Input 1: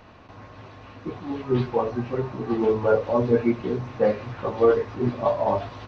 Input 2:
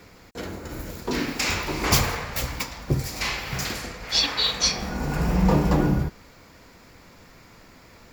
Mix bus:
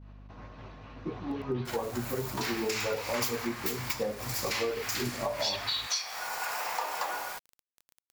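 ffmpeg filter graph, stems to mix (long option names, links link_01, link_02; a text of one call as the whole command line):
ffmpeg -i stem1.wav -i stem2.wav -filter_complex "[0:a]agate=range=-33dB:threshold=-41dB:ratio=3:detection=peak,aeval=exprs='val(0)+0.00562*(sin(2*PI*50*n/s)+sin(2*PI*2*50*n/s)/2+sin(2*PI*3*50*n/s)/3+sin(2*PI*4*50*n/s)/4+sin(2*PI*5*50*n/s)/5)':channel_layout=same,volume=-3dB[link_01];[1:a]highpass=frequency=740:width=0.5412,highpass=frequency=740:width=1.3066,highshelf=frequency=11000:gain=6.5,acrusher=bits=6:mix=0:aa=0.000001,adelay=1300,volume=1dB[link_02];[link_01][link_02]amix=inputs=2:normalize=0,acompressor=threshold=-29dB:ratio=6" out.wav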